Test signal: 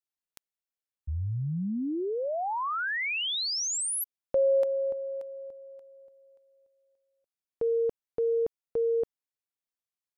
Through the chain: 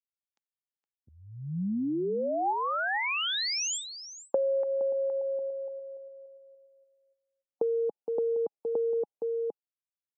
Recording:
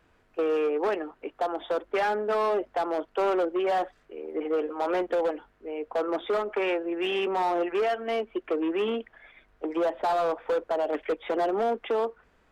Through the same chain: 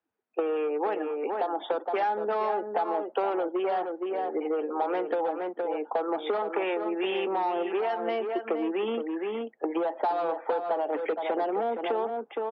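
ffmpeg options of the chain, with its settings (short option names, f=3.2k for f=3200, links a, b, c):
-filter_complex "[0:a]afftdn=nr=28:nf=-50,highpass=f=190:w=0.5412,highpass=f=190:w=1.3066,equalizer=f=830:t=o:w=0.2:g=8.5,aresample=16000,aresample=44100,highshelf=f=5.5k:g=-6,asplit=2[a][b];[b]adelay=466.5,volume=-8dB,highshelf=f=4k:g=-10.5[c];[a][c]amix=inputs=2:normalize=0,acompressor=threshold=-34dB:ratio=3:attack=32:release=230:knee=1:detection=peak,volume=4.5dB"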